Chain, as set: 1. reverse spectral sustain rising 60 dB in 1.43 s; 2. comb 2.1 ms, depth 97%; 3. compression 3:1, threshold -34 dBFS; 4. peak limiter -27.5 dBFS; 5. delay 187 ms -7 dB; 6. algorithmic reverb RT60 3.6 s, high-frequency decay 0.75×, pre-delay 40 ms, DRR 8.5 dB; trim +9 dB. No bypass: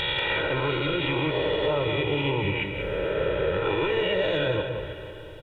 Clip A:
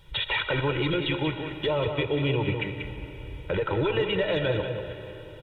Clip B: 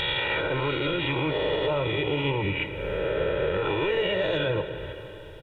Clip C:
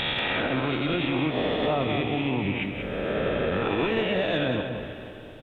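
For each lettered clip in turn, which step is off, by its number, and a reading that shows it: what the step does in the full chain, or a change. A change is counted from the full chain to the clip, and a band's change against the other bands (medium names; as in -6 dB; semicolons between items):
1, 125 Hz band +3.5 dB; 5, echo-to-direct -4.5 dB to -8.5 dB; 2, 250 Hz band +5.5 dB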